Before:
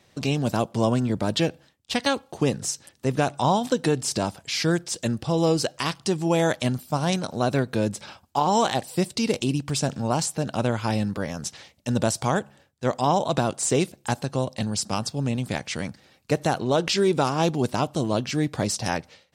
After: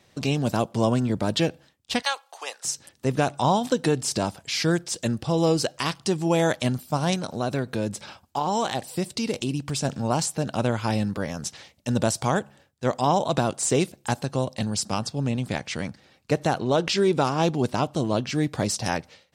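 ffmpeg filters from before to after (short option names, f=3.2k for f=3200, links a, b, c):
-filter_complex "[0:a]asettb=1/sr,asplit=3[a][b][c];[a]atrim=end=2.024[d];[b]atrim=start=2.02:end=2.65,asetpts=PTS-STARTPTS,afade=t=in:d=0.004:c=qsin,afade=t=out:st=0.626:d=0.004:c=qsin,highpass=f=740:w=0.5412,highpass=f=740:w=1.3066[e];[c]atrim=start=2.646[f];[d][e]acrossfade=d=0.004:c1=hsin:c2=qsin[g];[g][f]acrossfade=d=0.004:c1=qsin:c2=hsin,asettb=1/sr,asplit=3[h][i][j];[h]atrim=end=7.144[k];[i]atrim=start=7.14:end=9.85,asetpts=PTS-STARTPTS,afade=t=in:d=0.004:c=qsin,afade=t=out:st=2.706:d=0.004:c=qsin,acompressor=threshold=-27dB:ratio=1.5:attack=3.2:release=140:knee=1:detection=peak[l];[j]atrim=start=9.846[m];[k][l]acrossfade=d=0.004:c1=hsin:c2=qsin[n];[n][m]acrossfade=d=0.004:c1=qsin:c2=hsin,asettb=1/sr,asplit=3[o][p][q];[o]atrim=end=14.924[r];[p]atrim=start=14.92:end=18.36,asetpts=PTS-STARTPTS,afade=t=in:d=0.004:c=qsin,afade=t=out:st=3.436:d=0.004:c=qsin,highshelf=f=9.4k:g=-8[s];[q]atrim=start=18.356[t];[r][s]acrossfade=d=0.004:c1=hsin:c2=qsin[u];[u][t]acrossfade=d=0.004:c1=qsin:c2=hsin"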